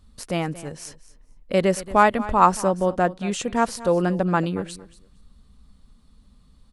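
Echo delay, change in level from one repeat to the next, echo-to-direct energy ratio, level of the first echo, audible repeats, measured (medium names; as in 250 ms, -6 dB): 228 ms, -16.0 dB, -17.0 dB, -17.0 dB, 2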